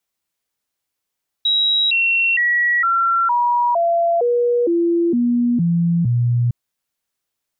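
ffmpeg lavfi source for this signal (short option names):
-f lavfi -i "aevalsrc='0.211*clip(min(mod(t,0.46),0.46-mod(t,0.46))/0.005,0,1)*sin(2*PI*3850*pow(2,-floor(t/0.46)/2)*mod(t,0.46))':d=5.06:s=44100"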